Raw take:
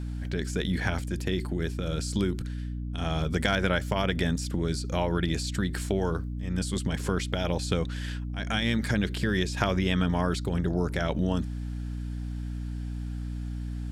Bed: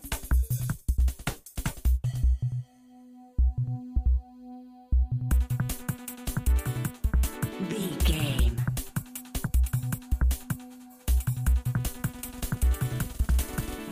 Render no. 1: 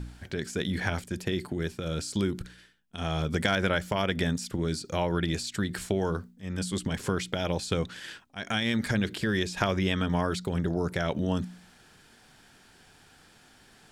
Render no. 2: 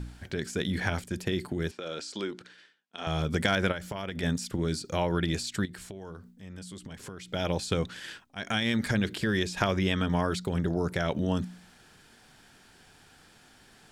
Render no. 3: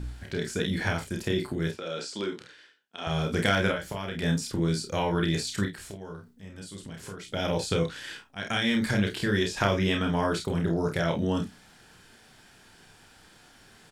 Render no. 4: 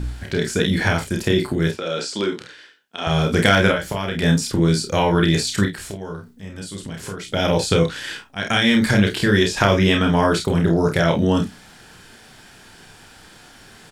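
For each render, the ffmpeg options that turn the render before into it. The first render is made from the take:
-af "bandreject=f=60:t=h:w=4,bandreject=f=120:t=h:w=4,bandreject=f=180:t=h:w=4,bandreject=f=240:t=h:w=4,bandreject=f=300:t=h:w=4"
-filter_complex "[0:a]asettb=1/sr,asplit=3[a][b][c];[a]atrim=end=1.714[d];[b]atrim=start=1.71:end=3.07,asetpts=PTS-STARTPTS,afade=t=in:d=0.004:c=qsin,afade=t=out:st=1.356:d=0.004:c=qsin,highpass=380,lowpass=5.6k[e];[c]atrim=start=3.066[f];[d][e]acrossfade=d=0.004:c1=hsin:c2=qsin[g];[g][f]acrossfade=d=0.004:c1=qsin:c2=hsin,asplit=3[h][i][j];[h]afade=t=out:st=3.71:d=0.02[k];[i]acompressor=threshold=-31dB:ratio=6:attack=3.2:release=140:knee=1:detection=peak,afade=t=in:st=3.71:d=0.02,afade=t=out:st=4.22:d=0.02[l];[j]afade=t=in:st=4.22:d=0.02[m];[k][l][m]amix=inputs=3:normalize=0,asettb=1/sr,asplit=3[n][o][p];[n]atrim=end=5.654[q];[o]atrim=start=5.65:end=7.34,asetpts=PTS-STARTPTS,afade=t=in:d=0.004:c=qsin,afade=t=out:st=1.686:d=0.004:c=qsin,acompressor=threshold=-43dB:ratio=3:attack=3.2:release=140:knee=1:detection=peak[r];[p]atrim=start=7.336[s];[q][r]acrossfade=d=0.004:c1=hsin:c2=qsin[t];[t][s]acrossfade=d=0.004:c1=qsin:c2=hsin"
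-filter_complex "[0:a]asplit=2[a][b];[b]adelay=32,volume=-13dB[c];[a][c]amix=inputs=2:normalize=0,aecho=1:1:30|48:0.596|0.398"
-af "volume=9.5dB,alimiter=limit=-2dB:level=0:latency=1"

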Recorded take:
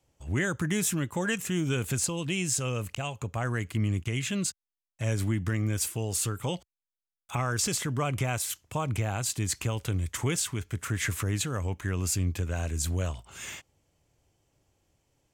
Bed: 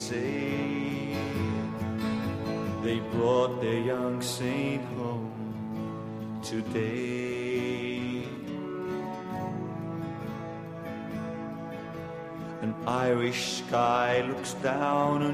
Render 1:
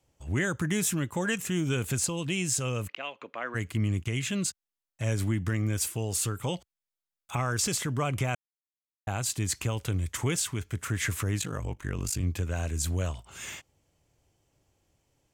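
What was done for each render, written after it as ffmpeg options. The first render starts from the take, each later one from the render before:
-filter_complex "[0:a]asplit=3[a][b][c];[a]afade=t=out:st=2.87:d=0.02[d];[b]highpass=f=300:w=0.5412,highpass=f=300:w=1.3066,equalizer=f=390:t=q:w=4:g=-6,equalizer=f=790:t=q:w=4:g=-7,equalizer=f=2k:t=q:w=4:g=4,lowpass=f=3.9k:w=0.5412,lowpass=f=3.9k:w=1.3066,afade=t=in:st=2.87:d=0.02,afade=t=out:st=3.54:d=0.02[e];[c]afade=t=in:st=3.54:d=0.02[f];[d][e][f]amix=inputs=3:normalize=0,asplit=3[g][h][i];[g]afade=t=out:st=11.39:d=0.02[j];[h]aeval=exprs='val(0)*sin(2*PI*25*n/s)':c=same,afade=t=in:st=11.39:d=0.02,afade=t=out:st=12.21:d=0.02[k];[i]afade=t=in:st=12.21:d=0.02[l];[j][k][l]amix=inputs=3:normalize=0,asplit=3[m][n][o];[m]atrim=end=8.35,asetpts=PTS-STARTPTS,afade=t=out:st=8.346:d=0.004:c=hsin[p];[n]atrim=start=8.35:end=9.07,asetpts=PTS-STARTPTS,volume=0[q];[o]atrim=start=9.07,asetpts=PTS-STARTPTS,afade=t=in:d=0.004:c=hsin[r];[p][q][r]concat=n=3:v=0:a=1"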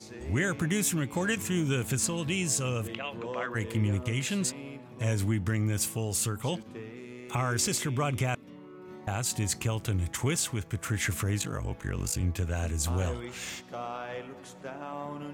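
-filter_complex "[1:a]volume=-12.5dB[a];[0:a][a]amix=inputs=2:normalize=0"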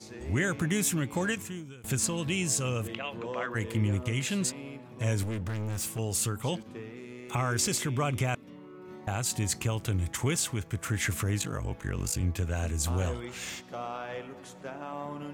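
-filter_complex "[0:a]asettb=1/sr,asplit=3[a][b][c];[a]atrim=end=5.234[d];[b]atrim=start=5.23:end=5.99,asetpts=PTS-STARTPTS,afade=t=in:d=0.004:c=qsin,afade=t=out:st=0.756:d=0.004:c=qsin,volume=30.5dB,asoftclip=hard,volume=-30.5dB[e];[c]atrim=start=5.986[f];[d][e]acrossfade=d=0.004:c1=hsin:c2=qsin[g];[g][f]acrossfade=d=0.004:c1=qsin:c2=hsin,asplit=2[h][i];[h]atrim=end=1.84,asetpts=PTS-STARTPTS,afade=t=out:st=1.25:d=0.59:c=qua:silence=0.0841395[j];[i]atrim=start=1.84,asetpts=PTS-STARTPTS,afade=t=in:d=0.004:c=hsin:silence=0.0841395[k];[j][k]concat=n=2:v=0:a=1"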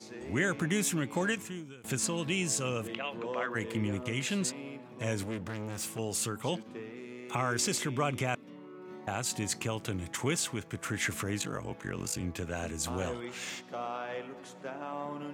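-af "highpass=170,highshelf=f=8.8k:g=-7.5"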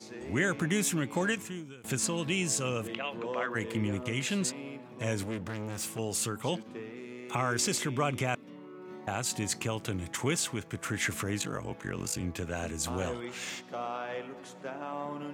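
-af "volume=1dB"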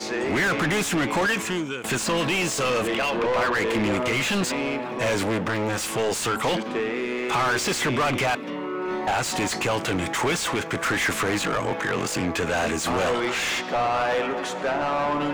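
-filter_complex "[0:a]asplit=2[a][b];[b]highpass=f=720:p=1,volume=31dB,asoftclip=type=tanh:threshold=-14.5dB[c];[a][c]amix=inputs=2:normalize=0,lowpass=f=2.7k:p=1,volume=-6dB"

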